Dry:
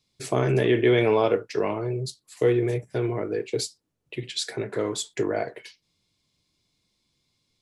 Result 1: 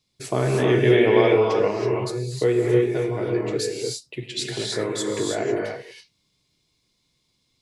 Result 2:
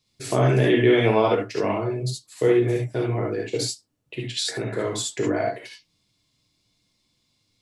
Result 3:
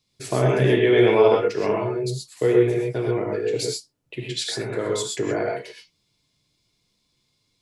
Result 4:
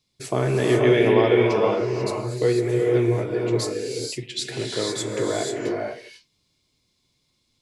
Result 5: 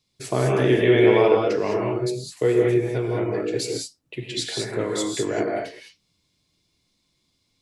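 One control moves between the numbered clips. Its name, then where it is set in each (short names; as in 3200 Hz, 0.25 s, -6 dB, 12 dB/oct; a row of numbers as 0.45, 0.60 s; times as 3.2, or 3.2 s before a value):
non-linear reverb, gate: 350, 90, 150, 520, 230 ms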